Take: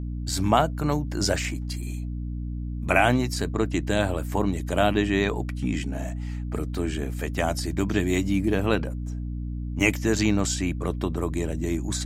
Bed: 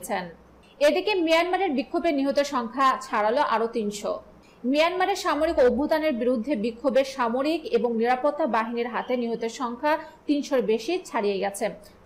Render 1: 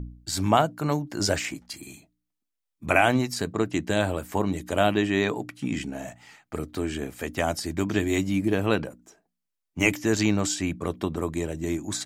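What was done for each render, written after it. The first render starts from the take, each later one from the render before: de-hum 60 Hz, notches 5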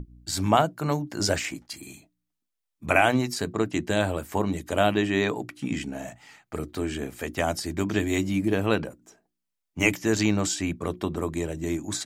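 hum notches 60/120/180/240/300/360 Hz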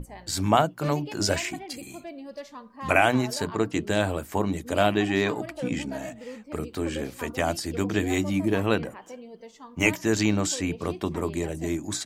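add bed -16.5 dB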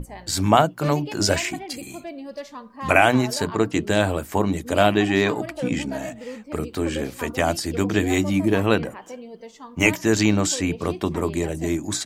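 trim +4.5 dB; peak limiter -2 dBFS, peak gain reduction 1 dB

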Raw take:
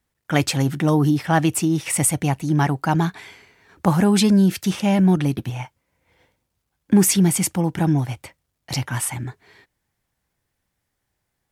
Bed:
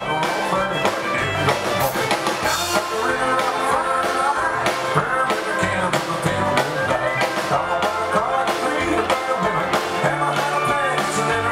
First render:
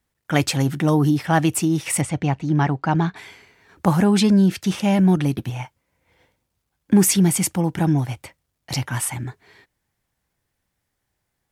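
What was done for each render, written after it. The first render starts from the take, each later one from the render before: 2.01–3.16 s: distance through air 130 m; 4.02–4.71 s: treble shelf 9.5 kHz -10.5 dB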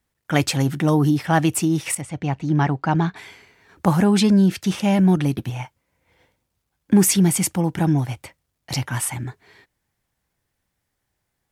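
1.95–2.45 s: fade in, from -12.5 dB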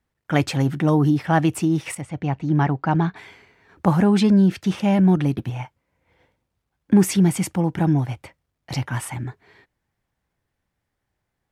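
treble shelf 4.2 kHz -11 dB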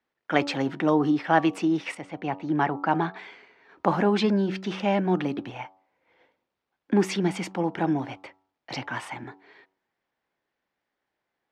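three-band isolator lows -22 dB, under 240 Hz, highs -23 dB, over 5.5 kHz; de-hum 95.03 Hz, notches 14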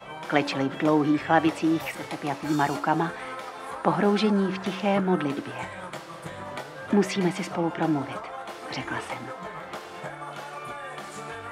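add bed -17.5 dB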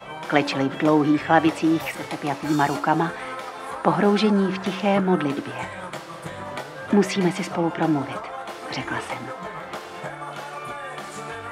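trim +3.5 dB

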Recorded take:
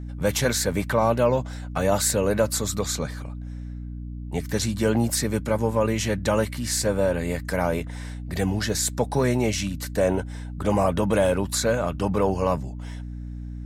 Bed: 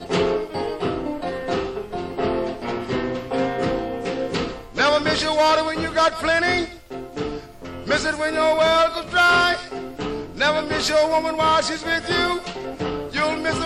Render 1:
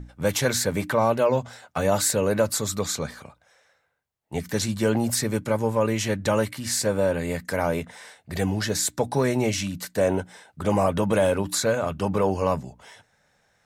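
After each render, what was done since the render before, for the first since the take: hum notches 60/120/180/240/300 Hz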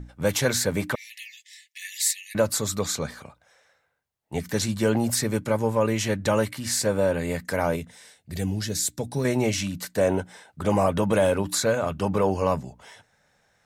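0.95–2.35 s: brick-wall FIR high-pass 1.7 kHz; 7.76–9.25 s: peaking EQ 1 kHz -12 dB 2.5 oct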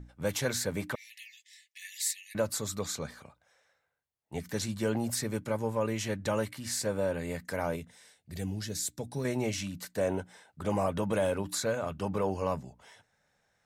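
trim -8 dB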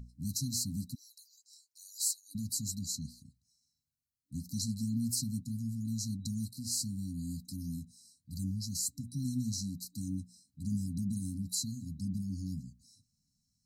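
FFT band-reject 290–3900 Hz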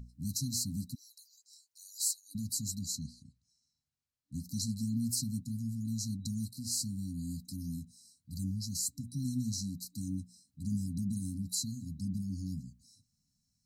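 3.04–4.34 s: low-pass 7.8 kHz

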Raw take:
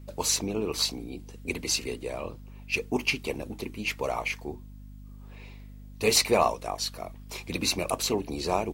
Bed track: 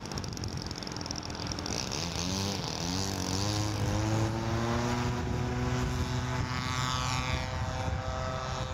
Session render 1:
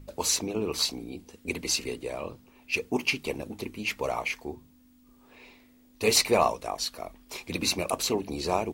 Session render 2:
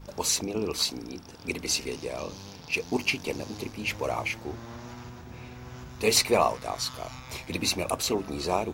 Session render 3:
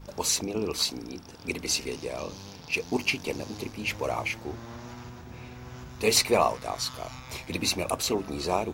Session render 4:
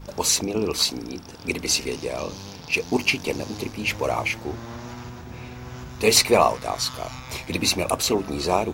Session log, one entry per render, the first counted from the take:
de-hum 50 Hz, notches 4
add bed track -12 dB
no audible change
trim +5.5 dB

